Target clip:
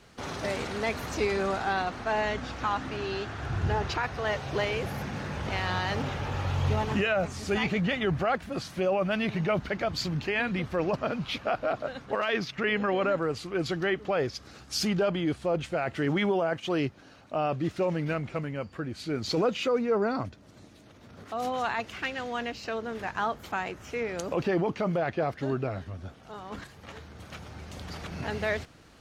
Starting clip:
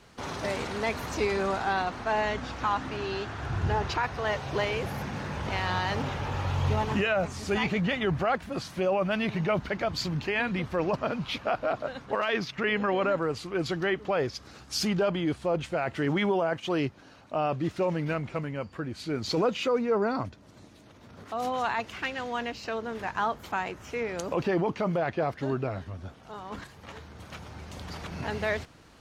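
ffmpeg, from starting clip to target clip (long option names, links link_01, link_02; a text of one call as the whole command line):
ffmpeg -i in.wav -af "equalizer=frequency=970:width_type=o:width=0.3:gain=-4" out.wav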